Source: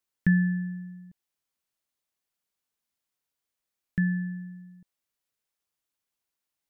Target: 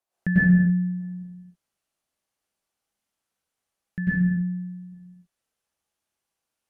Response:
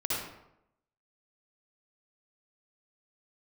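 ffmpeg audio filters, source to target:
-filter_complex "[0:a]asetnsamples=n=441:p=0,asendcmd='0.91 equalizer g 3',equalizer=f=700:t=o:w=1.2:g=14[s0];[1:a]atrim=start_sample=2205,afade=t=out:st=0.3:d=0.01,atrim=end_sample=13671,asetrate=25578,aresample=44100[s1];[s0][s1]afir=irnorm=-1:irlink=0,volume=0.501"

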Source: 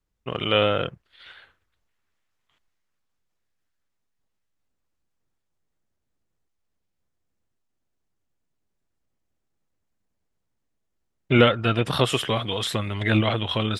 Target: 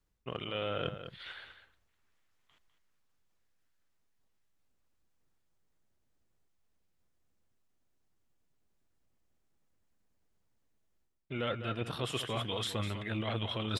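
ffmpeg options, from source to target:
-af "areverse,acompressor=threshold=0.0251:ratio=12,areverse,aecho=1:1:201:0.299"

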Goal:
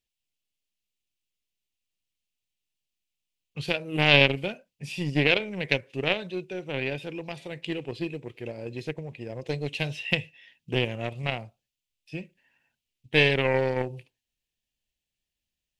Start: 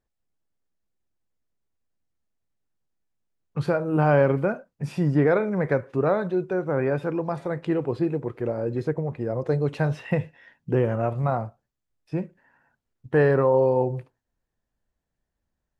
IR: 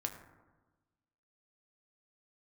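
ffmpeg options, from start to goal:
-af "aeval=exprs='0.422*(cos(1*acos(clip(val(0)/0.422,-1,1)))-cos(1*PI/2))+0.106*(cos(3*acos(clip(val(0)/0.422,-1,1)))-cos(3*PI/2))':c=same,highshelf=f=1900:t=q:w=3:g=13,volume=1.26"

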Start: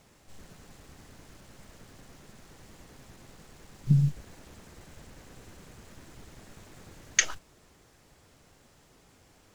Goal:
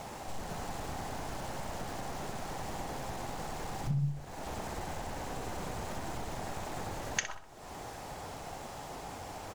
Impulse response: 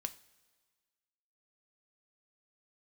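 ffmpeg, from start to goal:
-filter_complex "[0:a]equalizer=f=790:w=1.6:g=12.5,acompressor=threshold=0.00355:ratio=4,asplit=2[s0][s1];[s1]adelay=63,lowpass=f=4300:p=1,volume=0.355,asplit=2[s2][s3];[s3]adelay=63,lowpass=f=4300:p=1,volume=0.43,asplit=2[s4][s5];[s5]adelay=63,lowpass=f=4300:p=1,volume=0.43,asplit=2[s6][s7];[s7]adelay=63,lowpass=f=4300:p=1,volume=0.43,asplit=2[s8][s9];[s9]adelay=63,lowpass=f=4300:p=1,volume=0.43[s10];[s2][s4][s6][s8][s10]amix=inputs=5:normalize=0[s11];[s0][s11]amix=inputs=2:normalize=0,volume=4.22"

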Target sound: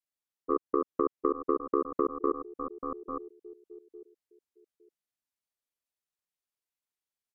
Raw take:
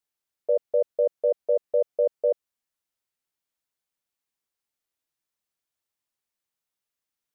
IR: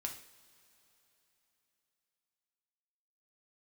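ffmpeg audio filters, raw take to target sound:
-af "aecho=1:1:855|1710|2565:0.668|0.14|0.0295,adynamicequalizer=threshold=0.0178:dfrequency=320:dqfactor=0.73:tfrequency=320:tqfactor=0.73:attack=5:release=100:ratio=0.375:range=2.5:mode=boostabove:tftype=bell,asetrate=32097,aresample=44100,atempo=1.37395,aeval=exprs='0.299*(cos(1*acos(clip(val(0)/0.299,-1,1)))-cos(1*PI/2))+0.133*(cos(3*acos(clip(val(0)/0.299,-1,1)))-cos(3*PI/2))+0.00299*(cos(4*acos(clip(val(0)/0.299,-1,1)))-cos(4*PI/2))':c=same,acompressor=threshold=0.0562:ratio=2.5"

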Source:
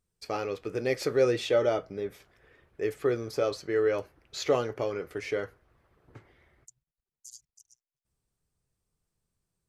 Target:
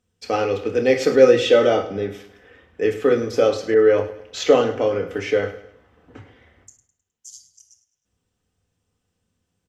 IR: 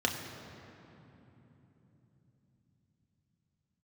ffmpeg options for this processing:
-filter_complex "[0:a]aecho=1:1:104|208|312|416:0.188|0.0753|0.0301|0.0121[s0];[1:a]atrim=start_sample=2205,atrim=end_sample=3528[s1];[s0][s1]afir=irnorm=-1:irlink=0,asettb=1/sr,asplit=3[s2][s3][s4];[s2]atrim=end=3.744[s5];[s3]atrim=start=3.74:end=5.42,asetpts=PTS-STARTPTS,afade=t=in:d=0.004:c=qsin,afade=t=out:st=1.676:d=0.004:c=qsin,adynamicequalizer=threshold=0.0141:dfrequency=2000:dqfactor=0.7:tfrequency=2000:tqfactor=0.7:attack=5:release=100:ratio=0.375:range=2.5:mode=cutabove:tftype=highshelf[s6];[s4]atrim=start=5.416[s7];[s5][s6]acrossfade=d=0.004:c1=hsin:c2=qsin[s8];[s8][s7]acrossfade=d=0.004:c1=qsin:c2=hsin,volume=1.33"

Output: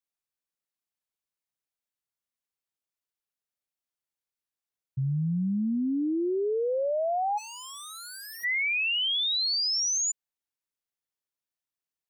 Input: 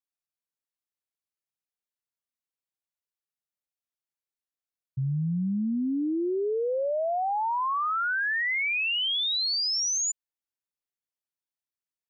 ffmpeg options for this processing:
-filter_complex "[0:a]asettb=1/sr,asplit=3[s0][s1][s2];[s0]atrim=end=4.994[s3];[s1]atrim=start=4.99:end=5.77,asetpts=PTS-STARTPTS,afade=t=in:d=0.004:c=qsin,afade=t=out:st=0.776:d=0.004:c=qsin,highshelf=f=2600:g=11[s4];[s2]atrim=start=5.766[s5];[s3][s4]acrossfade=d=0.004:c1=hsin:c2=qsin[s6];[s6][s5]acrossfade=d=0.004:c1=qsin:c2=hsin,asplit=3[s7][s8][s9];[s7]afade=t=out:st=7.37:d=0.02[s10];[s8]aeval=exprs='0.0119*(abs(mod(val(0)/0.0119+3,4)-2)-1)':c=same,afade=t=in:st=7.37:d=0.02,afade=t=out:st=8.43:d=0.02[s11];[s9]afade=t=in:st=8.43:d=0.02[s12];[s10][s11][s12]amix=inputs=3:normalize=0"

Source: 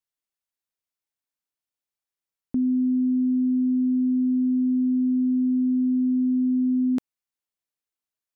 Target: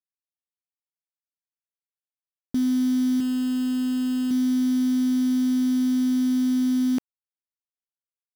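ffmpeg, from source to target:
-filter_complex "[0:a]asettb=1/sr,asplit=3[s0][s1][s2];[s0]atrim=end=3.204[s3];[s1]atrim=start=3.2:end=4.31,asetpts=PTS-STARTPTS,afade=t=in:d=0.004:c=qsin,afade=t=out:st=1.106:d=0.004:c=qsin,lowshelf=f=140:g=-11.5[s4];[s2]atrim=start=4.306[s5];[s3][s4]acrossfade=d=0.004:c1=hsin:c2=qsin[s6];[s6][s5]acrossfade=d=0.004:c1=qsin:c2=hsin,acrusher=bits=7:dc=4:mix=0:aa=0.000001"

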